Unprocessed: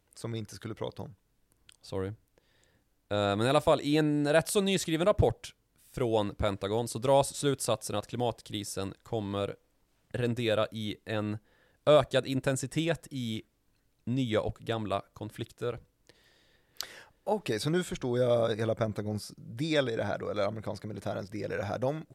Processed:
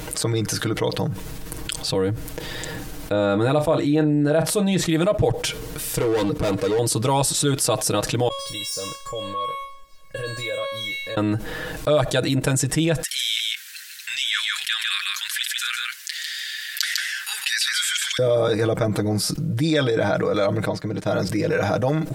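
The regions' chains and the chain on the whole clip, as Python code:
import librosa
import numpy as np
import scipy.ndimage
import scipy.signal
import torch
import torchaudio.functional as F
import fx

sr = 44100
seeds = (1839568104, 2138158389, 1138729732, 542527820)

y = fx.chain(x, sr, fx.high_shelf(hz=2200.0, db=-11.0),
    fx.doubler(ms=35.0, db=-14.0), at=(3.12, 4.89))
y = fx.chain(y, sr, fx.clip_hard(threshold_db=-33.0),
    fx.peak_eq(hz=440.0, db=6.5, octaves=0.44), at=(5.43, 6.79))
y = fx.chain(y, sr, fx.median_filter(points=3),
    fx.comb_fb(f0_hz=550.0, decay_s=0.5, harmonics='all', damping=0.0, mix_pct=100), at=(8.28, 11.17))
y = fx.chain(y, sr, fx.ellip_highpass(hz=1600.0, order=4, stop_db=60),
    fx.echo_single(ms=150, db=-5.5), at=(13.03, 18.19))
y = fx.chain(y, sr, fx.peak_eq(hz=11000.0, db=-11.0, octaves=0.37),
    fx.upward_expand(threshold_db=-50.0, expansion=2.5), at=(20.65, 21.08))
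y = y + 0.75 * np.pad(y, (int(6.4 * sr / 1000.0), 0))[:len(y)]
y = fx.env_flatten(y, sr, amount_pct=70)
y = F.gain(torch.from_numpy(y), -1.5).numpy()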